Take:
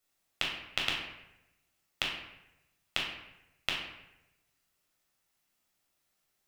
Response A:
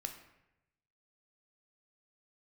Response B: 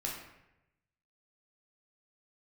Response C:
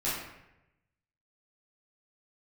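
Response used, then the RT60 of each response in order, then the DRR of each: B; 0.90 s, 0.90 s, 0.90 s; 5.5 dB, -3.0 dB, -11.5 dB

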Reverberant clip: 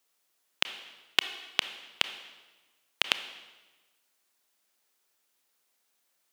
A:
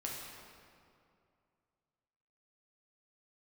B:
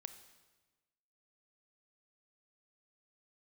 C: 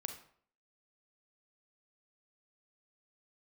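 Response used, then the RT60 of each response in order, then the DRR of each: B; 2.4 s, 1.2 s, 0.55 s; -3.5 dB, 10.0 dB, 5.5 dB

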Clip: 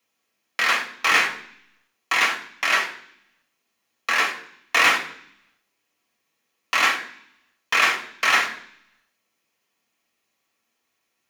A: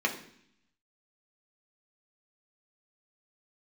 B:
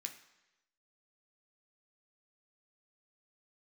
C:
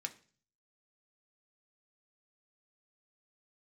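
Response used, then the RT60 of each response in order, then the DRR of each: A; 0.65 s, 1.0 s, 0.40 s; 0.0 dB, 3.5 dB, 5.0 dB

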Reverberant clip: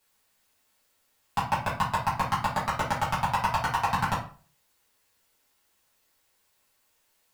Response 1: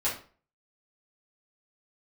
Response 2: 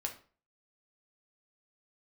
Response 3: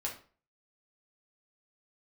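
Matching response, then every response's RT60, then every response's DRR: 1; 0.40 s, 0.40 s, 0.40 s; -9.0 dB, 2.0 dB, -2.5 dB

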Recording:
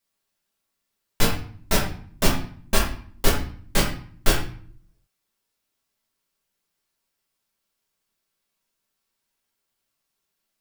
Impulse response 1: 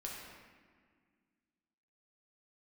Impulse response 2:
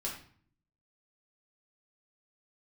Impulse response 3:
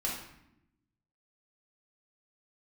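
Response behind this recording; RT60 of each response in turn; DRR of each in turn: 2; 1.8 s, 0.50 s, 0.80 s; -3.5 dB, -4.5 dB, -5.0 dB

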